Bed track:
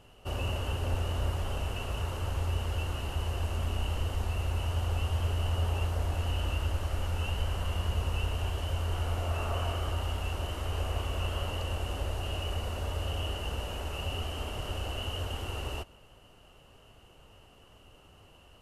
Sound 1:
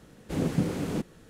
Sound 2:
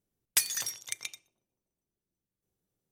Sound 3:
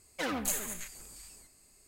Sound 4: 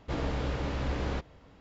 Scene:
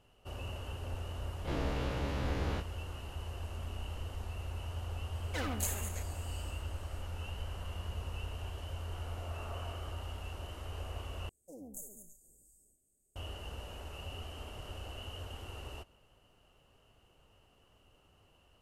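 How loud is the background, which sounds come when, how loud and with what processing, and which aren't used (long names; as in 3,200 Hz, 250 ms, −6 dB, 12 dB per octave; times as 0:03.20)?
bed track −9.5 dB
0:01.39: mix in 4 −7 dB + every bin's largest magnitude spread in time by 60 ms
0:05.15: mix in 3 −4.5 dB
0:11.29: overwrite with 3 −13 dB + inverse Chebyshev band-stop filter 1,200–3,800 Hz, stop band 50 dB
not used: 1, 2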